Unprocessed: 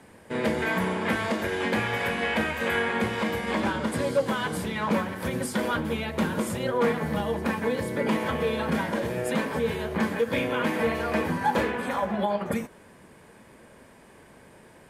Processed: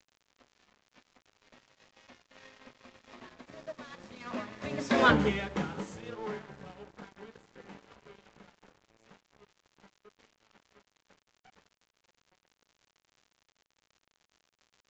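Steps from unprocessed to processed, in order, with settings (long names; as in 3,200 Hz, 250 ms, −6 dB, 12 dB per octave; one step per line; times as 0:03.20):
source passing by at 0:05.10, 40 m/s, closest 4.7 metres
low-shelf EQ 130 Hz −4 dB
dead-zone distortion −54.5 dBFS
surface crackle 100 per second −55 dBFS
downsampling to 16,000 Hz
level +6.5 dB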